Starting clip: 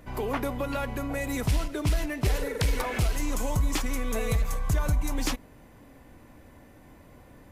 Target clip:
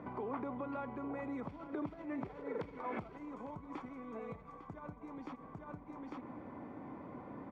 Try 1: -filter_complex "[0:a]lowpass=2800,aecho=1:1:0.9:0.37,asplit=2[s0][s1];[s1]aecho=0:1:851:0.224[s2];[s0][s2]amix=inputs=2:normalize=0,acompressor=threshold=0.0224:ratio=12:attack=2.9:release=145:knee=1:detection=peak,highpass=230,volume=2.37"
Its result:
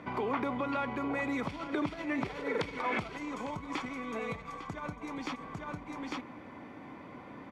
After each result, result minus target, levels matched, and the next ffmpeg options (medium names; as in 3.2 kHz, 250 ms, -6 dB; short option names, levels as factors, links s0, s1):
compression: peak gain reduction -7.5 dB; 2 kHz band +6.5 dB
-filter_complex "[0:a]lowpass=2800,aecho=1:1:0.9:0.37,asplit=2[s0][s1];[s1]aecho=0:1:851:0.224[s2];[s0][s2]amix=inputs=2:normalize=0,acompressor=threshold=0.00891:ratio=12:attack=2.9:release=145:knee=1:detection=peak,highpass=230,volume=2.37"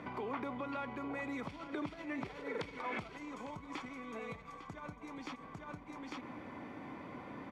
2 kHz band +7.0 dB
-filter_complex "[0:a]lowpass=1100,aecho=1:1:0.9:0.37,asplit=2[s0][s1];[s1]aecho=0:1:851:0.224[s2];[s0][s2]amix=inputs=2:normalize=0,acompressor=threshold=0.00891:ratio=12:attack=2.9:release=145:knee=1:detection=peak,highpass=230,volume=2.37"